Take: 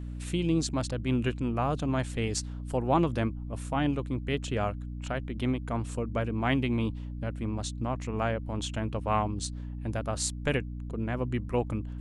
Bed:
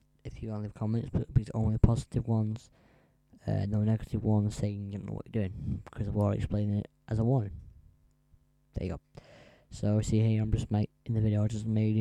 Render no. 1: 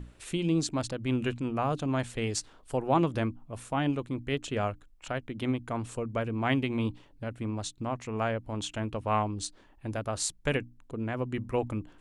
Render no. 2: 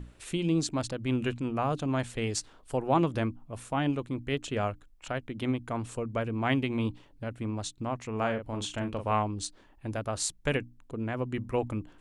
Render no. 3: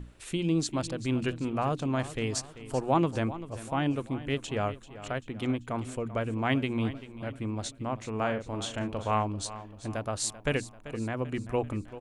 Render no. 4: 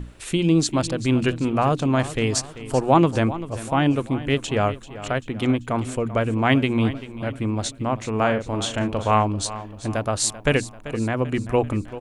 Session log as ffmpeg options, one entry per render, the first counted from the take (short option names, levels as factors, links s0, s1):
-af "bandreject=f=60:t=h:w=6,bandreject=f=120:t=h:w=6,bandreject=f=180:t=h:w=6,bandreject=f=240:t=h:w=6,bandreject=f=300:t=h:w=6"
-filter_complex "[0:a]asettb=1/sr,asplit=3[s0][s1][s2];[s0]atrim=end=8.164[s3];[s1]atrim=start=8.16:end=9.12,asetpts=PTS-STARTPTS,afade=t=in:d=0.004:c=qsin,afade=t=out:st=0.956:d=0.004:c=qsin,asplit=2[s4][s5];[s5]adelay=40,volume=0.447[s6];[s4][s6]amix=inputs=2:normalize=0,atrim=end_sample=42336[s7];[s2]atrim=start=9.116[s8];[s3][s7]acrossfade=d=0.004:c1=hsin:c2=qsin[s9];[s9][s8]acrossfade=d=0.004:c1=qsin:c2=hsin"
-af "aecho=1:1:389|778|1167|1556|1945:0.178|0.0871|0.0427|0.0209|0.0103"
-af "volume=2.82"